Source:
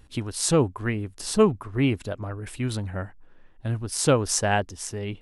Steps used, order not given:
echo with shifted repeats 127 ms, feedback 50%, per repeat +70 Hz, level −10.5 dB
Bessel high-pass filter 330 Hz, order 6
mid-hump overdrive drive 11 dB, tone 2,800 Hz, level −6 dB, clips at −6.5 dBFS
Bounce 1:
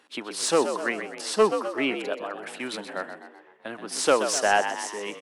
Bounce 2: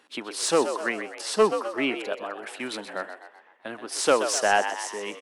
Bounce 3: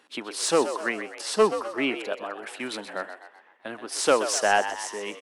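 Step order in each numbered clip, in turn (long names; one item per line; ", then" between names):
echo with shifted repeats, then Bessel high-pass filter, then mid-hump overdrive
Bessel high-pass filter, then echo with shifted repeats, then mid-hump overdrive
Bessel high-pass filter, then mid-hump overdrive, then echo with shifted repeats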